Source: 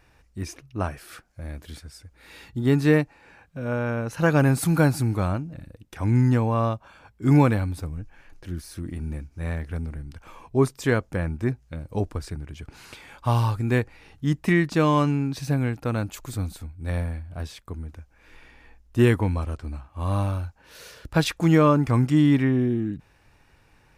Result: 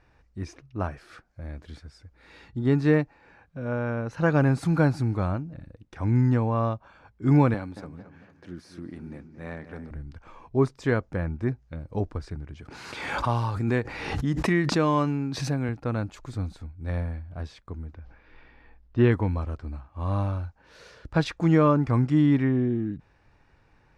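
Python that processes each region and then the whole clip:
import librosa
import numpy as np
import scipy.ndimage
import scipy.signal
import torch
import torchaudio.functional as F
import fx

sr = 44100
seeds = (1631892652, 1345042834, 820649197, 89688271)

y = fx.chain(x, sr, fx.highpass(hz=190.0, slope=12),
    fx.echo_wet_lowpass(ms=224, feedback_pct=45, hz=2800.0, wet_db=-11.0), at=(7.54, 9.91))
y = fx.chain(y, sr, fx.highpass(hz=140.0, slope=6),
    fx.high_shelf(hz=11000.0, db=11.5),
    fx.pre_swell(db_per_s=34.0), at=(12.6, 15.69))
y = fx.chain(y, sr, fx.lowpass(hz=4800.0, slope=24),
    fx.sustainer(db_per_s=80.0), at=(17.94, 19.12))
y = scipy.signal.sosfilt(scipy.signal.butter(2, 4400.0, 'lowpass', fs=sr, output='sos'), y)
y = fx.peak_eq(y, sr, hz=2900.0, db=-5.0, octaves=0.95)
y = F.gain(torch.from_numpy(y), -2.0).numpy()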